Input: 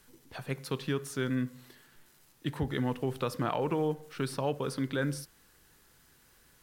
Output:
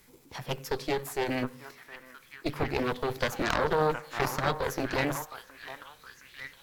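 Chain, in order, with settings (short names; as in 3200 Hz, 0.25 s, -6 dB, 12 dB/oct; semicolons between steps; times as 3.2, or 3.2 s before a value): delay with a stepping band-pass 0.716 s, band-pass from 920 Hz, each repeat 0.7 oct, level -3.5 dB; formant shift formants +4 st; added harmonics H 4 -7 dB, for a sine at -15.5 dBFS; gain +2 dB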